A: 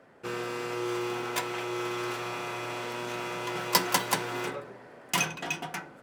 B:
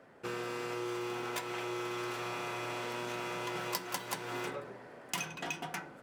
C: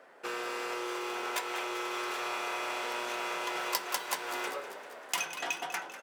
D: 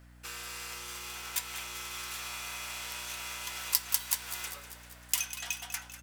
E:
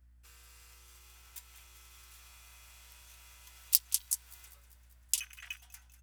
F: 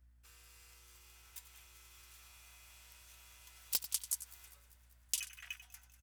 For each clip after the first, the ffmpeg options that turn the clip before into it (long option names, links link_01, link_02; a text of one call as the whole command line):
ffmpeg -i in.wav -af "acompressor=threshold=-33dB:ratio=5,volume=-1.5dB" out.wav
ffmpeg -i in.wav -filter_complex "[0:a]highpass=490,asplit=2[link_01][link_02];[link_02]asplit=7[link_03][link_04][link_05][link_06][link_07][link_08][link_09];[link_03]adelay=196,afreqshift=41,volume=-13dB[link_10];[link_04]adelay=392,afreqshift=82,volume=-17.2dB[link_11];[link_05]adelay=588,afreqshift=123,volume=-21.3dB[link_12];[link_06]adelay=784,afreqshift=164,volume=-25.5dB[link_13];[link_07]adelay=980,afreqshift=205,volume=-29.6dB[link_14];[link_08]adelay=1176,afreqshift=246,volume=-33.8dB[link_15];[link_09]adelay=1372,afreqshift=287,volume=-37.9dB[link_16];[link_10][link_11][link_12][link_13][link_14][link_15][link_16]amix=inputs=7:normalize=0[link_17];[link_01][link_17]amix=inputs=2:normalize=0,volume=4.5dB" out.wav
ffmpeg -i in.wav -af "aderivative,aeval=exprs='val(0)+0.001*(sin(2*PI*60*n/s)+sin(2*PI*2*60*n/s)/2+sin(2*PI*3*60*n/s)/3+sin(2*PI*4*60*n/s)/4+sin(2*PI*5*60*n/s)/5)':channel_layout=same,volume=6dB" out.wav
ffmpeg -i in.wav -af "afwtdn=0.0126,highshelf=frequency=7100:gain=7.5,volume=-3.5dB" out.wav
ffmpeg -i in.wav -filter_complex "[0:a]acrossover=split=4100[link_01][link_02];[link_02]volume=21.5dB,asoftclip=hard,volume=-21.5dB[link_03];[link_01][link_03]amix=inputs=2:normalize=0,aecho=1:1:92:0.224,volume=-3dB" out.wav